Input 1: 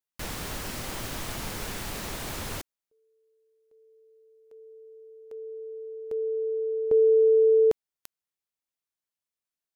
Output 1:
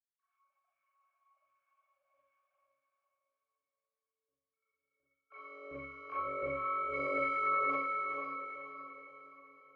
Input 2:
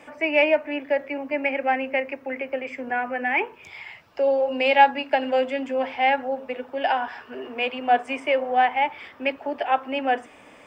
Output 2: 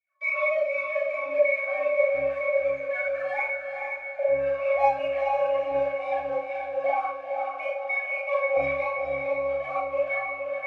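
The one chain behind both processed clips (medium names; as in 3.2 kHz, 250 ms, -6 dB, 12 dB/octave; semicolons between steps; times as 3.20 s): formants replaced by sine waves; high-pass 230 Hz 12 dB/octave; waveshaping leveller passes 5; in parallel at -0.5 dB: compression, threshold -20 dBFS; on the sum: LFO high-pass saw down 1.4 Hz 620–2000 Hz; pitch-class resonator C#, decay 0.52 s; peak limiter -22.5 dBFS; on a send: echo that smears into a reverb 464 ms, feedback 46%, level -4 dB; on the sum: Schroeder reverb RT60 0.39 s, combs from 29 ms, DRR -6.5 dB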